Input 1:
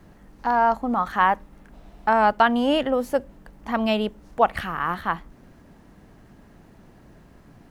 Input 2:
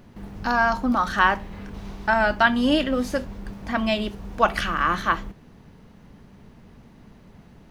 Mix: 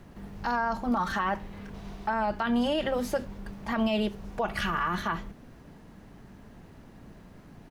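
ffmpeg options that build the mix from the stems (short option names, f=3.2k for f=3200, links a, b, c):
-filter_complex "[0:a]volume=-2dB[a];[1:a]adelay=0.4,volume=-5dB[b];[a][b]amix=inputs=2:normalize=0,acrossover=split=400[c][d];[d]acompressor=threshold=-21dB:ratio=3[e];[c][e]amix=inputs=2:normalize=0,alimiter=limit=-19dB:level=0:latency=1:release=36"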